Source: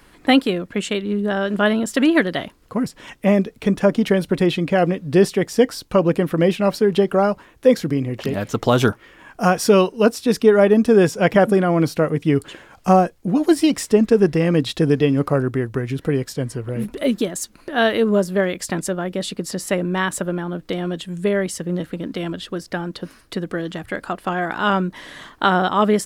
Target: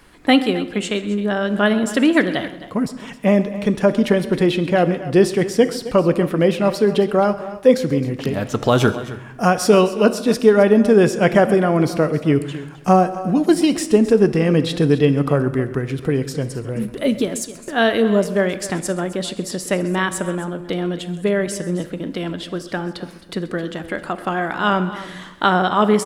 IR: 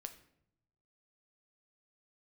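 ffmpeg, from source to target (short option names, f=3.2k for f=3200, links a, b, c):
-filter_complex "[0:a]aecho=1:1:130|265:0.112|0.168,asplit=2[a][b];[1:a]atrim=start_sample=2205,asetrate=22050,aresample=44100[c];[b][c]afir=irnorm=-1:irlink=0,volume=-0.5dB[d];[a][d]amix=inputs=2:normalize=0,volume=-4.5dB"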